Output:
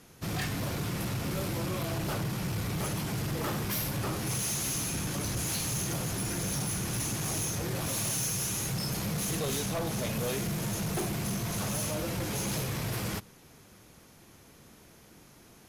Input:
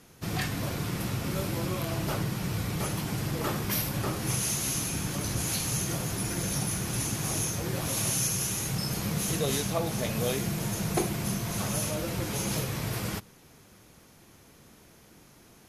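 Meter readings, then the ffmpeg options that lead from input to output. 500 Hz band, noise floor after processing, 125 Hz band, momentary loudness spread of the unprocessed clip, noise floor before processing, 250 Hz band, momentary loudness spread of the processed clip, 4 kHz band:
-2.5 dB, -56 dBFS, -2.0 dB, 4 LU, -56 dBFS, -2.0 dB, 3 LU, -1.5 dB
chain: -af "asoftclip=type=hard:threshold=0.0376"

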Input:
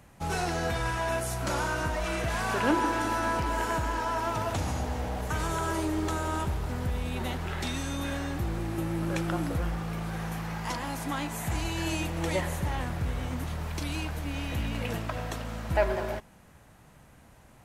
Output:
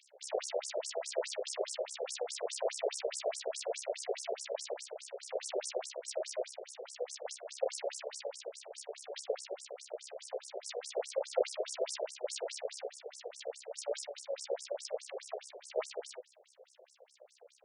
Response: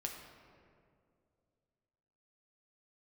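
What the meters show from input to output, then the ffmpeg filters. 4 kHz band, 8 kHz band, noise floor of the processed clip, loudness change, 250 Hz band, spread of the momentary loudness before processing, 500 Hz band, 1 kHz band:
-4.5 dB, -1.5 dB, -67 dBFS, -8.5 dB, under -25 dB, 6 LU, -2.5 dB, -15.5 dB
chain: -filter_complex "[0:a]highpass=370,aderivative,aeval=exprs='abs(val(0))':c=same,tremolo=f=66:d=0.974,lowshelf=f=770:t=q:w=3:g=12,asplit=2[s0][s1];[s1]volume=39.8,asoftclip=hard,volume=0.0251,volume=0.631[s2];[s0][s2]amix=inputs=2:normalize=0,flanger=delay=5.9:depth=4.9:regen=51:speed=1:shape=triangular,afftfilt=real='re*between(b*sr/1024,520*pow(7400/520,0.5+0.5*sin(2*PI*4.8*pts/sr))/1.41,520*pow(7400/520,0.5+0.5*sin(2*PI*4.8*pts/sr))*1.41)':imag='im*between(b*sr/1024,520*pow(7400/520,0.5+0.5*sin(2*PI*4.8*pts/sr))/1.41,520*pow(7400/520,0.5+0.5*sin(2*PI*4.8*pts/sr))*1.41)':win_size=1024:overlap=0.75,volume=7.5"

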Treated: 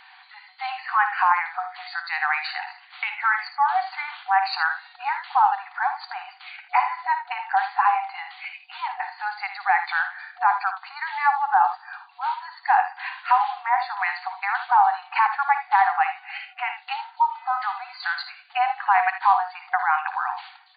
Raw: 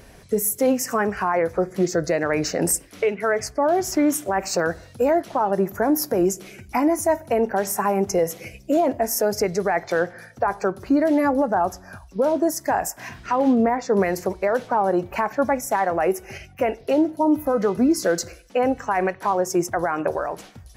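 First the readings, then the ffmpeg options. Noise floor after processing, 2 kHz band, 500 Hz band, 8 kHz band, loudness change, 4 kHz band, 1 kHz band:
-51 dBFS, +5.5 dB, under -20 dB, under -40 dB, -1.5 dB, 0.0 dB, +5.0 dB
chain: -filter_complex "[0:a]afftfilt=real='re*between(b*sr/4096,730,4700)':imag='im*between(b*sr/4096,730,4700)':win_size=4096:overlap=0.75,asplit=2[s0][s1];[s1]aecho=0:1:56|78:0.282|0.266[s2];[s0][s2]amix=inputs=2:normalize=0,volume=1.78"

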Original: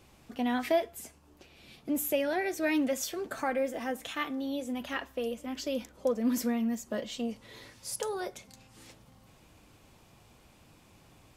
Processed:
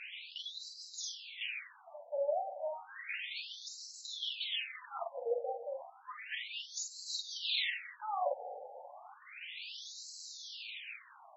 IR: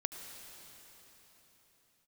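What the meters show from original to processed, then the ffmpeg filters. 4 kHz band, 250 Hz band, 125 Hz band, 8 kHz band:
+5.5 dB, under -40 dB, under -40 dB, -4.5 dB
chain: -filter_complex "[0:a]highshelf=f=1800:t=q:w=1.5:g=10,acrossover=split=4000[s0][s1];[s1]acompressor=threshold=0.00501:ratio=4:attack=1:release=60[s2];[s0][s2]amix=inputs=2:normalize=0,bandreject=f=50:t=h:w=6,bandreject=f=100:t=h:w=6,bandreject=f=150:t=h:w=6,bandreject=f=200:t=h:w=6,bandreject=f=250:t=h:w=6,areverse,acompressor=threshold=0.0126:ratio=16,areverse,aphaser=in_gain=1:out_gain=1:delay=1.5:decay=0.39:speed=1.1:type=sinusoidal,asplit=2[s3][s4];[1:a]atrim=start_sample=2205,adelay=45[s5];[s4][s5]afir=irnorm=-1:irlink=0,volume=0.668[s6];[s3][s6]amix=inputs=2:normalize=0,afftfilt=real='re*between(b*sr/1024,610*pow(5600/610,0.5+0.5*sin(2*PI*0.32*pts/sr))/1.41,610*pow(5600/610,0.5+0.5*sin(2*PI*0.32*pts/sr))*1.41)':imag='im*between(b*sr/1024,610*pow(5600/610,0.5+0.5*sin(2*PI*0.32*pts/sr))/1.41,610*pow(5600/610,0.5+0.5*sin(2*PI*0.32*pts/sr))*1.41)':win_size=1024:overlap=0.75,volume=2.99"

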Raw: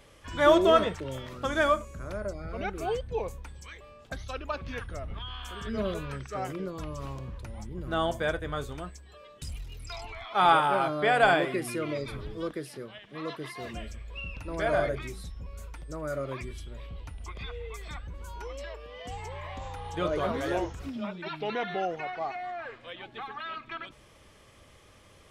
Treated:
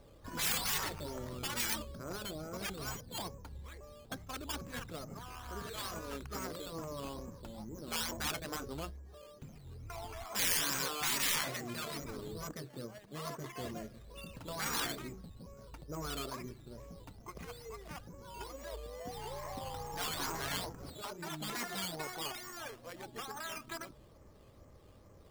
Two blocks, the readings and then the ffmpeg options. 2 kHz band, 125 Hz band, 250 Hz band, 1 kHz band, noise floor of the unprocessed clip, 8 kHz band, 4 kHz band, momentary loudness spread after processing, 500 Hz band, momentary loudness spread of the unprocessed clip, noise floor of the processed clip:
-8.5 dB, -8.0 dB, -10.0 dB, -13.5 dB, -56 dBFS, +9.5 dB, -0.5 dB, 17 LU, -15.5 dB, 19 LU, -58 dBFS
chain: -af "adynamicsmooth=sensitivity=3:basefreq=1000,acrusher=samples=9:mix=1:aa=0.000001:lfo=1:lforange=5.4:lforate=2.3,afftfilt=real='re*lt(hypot(re,im),0.0794)':imag='im*lt(hypot(re,im),0.0794)':win_size=1024:overlap=0.75"

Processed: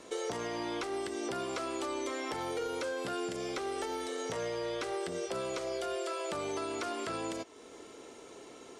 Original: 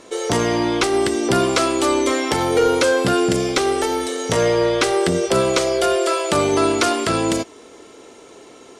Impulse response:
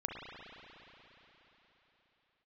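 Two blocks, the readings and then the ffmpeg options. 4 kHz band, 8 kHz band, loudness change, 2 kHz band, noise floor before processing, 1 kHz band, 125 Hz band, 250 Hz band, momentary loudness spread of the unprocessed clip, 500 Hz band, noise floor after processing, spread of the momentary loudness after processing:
-18.0 dB, -18.5 dB, -18.0 dB, -17.5 dB, -44 dBFS, -17.0 dB, -23.0 dB, -19.0 dB, 4 LU, -18.0 dB, -52 dBFS, 14 LU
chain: -filter_complex "[0:a]alimiter=limit=0.188:level=0:latency=1:release=446,acrossover=split=360|2200|7600[s0][s1][s2][s3];[s0]acompressor=threshold=0.0112:ratio=4[s4];[s1]acompressor=threshold=0.0398:ratio=4[s5];[s2]acompressor=threshold=0.0112:ratio=4[s6];[s3]acompressor=threshold=0.00282:ratio=4[s7];[s4][s5][s6][s7]amix=inputs=4:normalize=0,volume=0.422"

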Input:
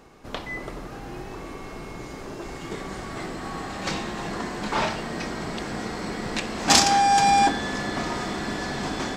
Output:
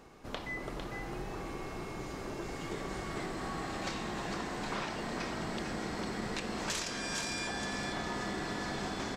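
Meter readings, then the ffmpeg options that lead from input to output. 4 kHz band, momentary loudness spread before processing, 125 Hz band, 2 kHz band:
-12.5 dB, 20 LU, -7.5 dB, -9.0 dB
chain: -filter_complex "[0:a]afftfilt=real='re*lt(hypot(re,im),0.316)':imag='im*lt(hypot(re,im),0.316)':win_size=1024:overlap=0.75,acompressor=threshold=0.0316:ratio=6,asplit=2[s0][s1];[s1]aecho=0:1:452:0.501[s2];[s0][s2]amix=inputs=2:normalize=0,volume=0.596"

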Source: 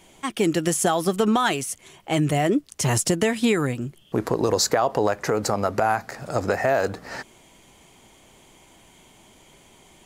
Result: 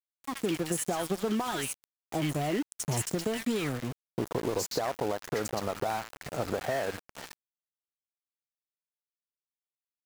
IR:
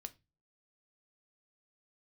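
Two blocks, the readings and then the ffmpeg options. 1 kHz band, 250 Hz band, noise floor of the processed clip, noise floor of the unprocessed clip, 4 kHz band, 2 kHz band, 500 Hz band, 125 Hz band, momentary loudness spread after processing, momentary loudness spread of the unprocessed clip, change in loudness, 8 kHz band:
-10.5 dB, -9.0 dB, under -85 dBFS, -54 dBFS, -9.0 dB, -10.5 dB, -9.5 dB, -9.0 dB, 8 LU, 9 LU, -9.5 dB, -9.0 dB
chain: -filter_complex "[0:a]acompressor=threshold=0.0501:ratio=2.5,acrossover=split=1400|5500[s0][s1][s2];[s0]adelay=40[s3];[s1]adelay=120[s4];[s3][s4][s2]amix=inputs=3:normalize=0,aeval=exprs='val(0)*gte(abs(val(0)),0.0266)':c=same,volume=0.708"

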